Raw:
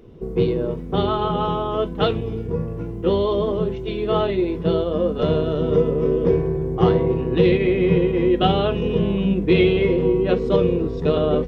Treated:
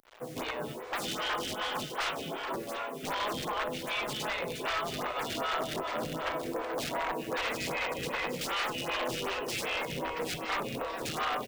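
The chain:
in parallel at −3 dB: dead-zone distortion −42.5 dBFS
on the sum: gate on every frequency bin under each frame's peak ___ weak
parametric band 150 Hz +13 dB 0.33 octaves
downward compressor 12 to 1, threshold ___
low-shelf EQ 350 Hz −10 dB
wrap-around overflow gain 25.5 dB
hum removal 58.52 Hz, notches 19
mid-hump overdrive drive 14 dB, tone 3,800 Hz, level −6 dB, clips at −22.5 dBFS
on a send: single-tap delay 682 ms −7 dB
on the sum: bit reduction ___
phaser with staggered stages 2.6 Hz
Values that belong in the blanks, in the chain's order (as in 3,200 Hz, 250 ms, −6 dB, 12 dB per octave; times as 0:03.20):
−10 dB, −23 dBFS, 8 bits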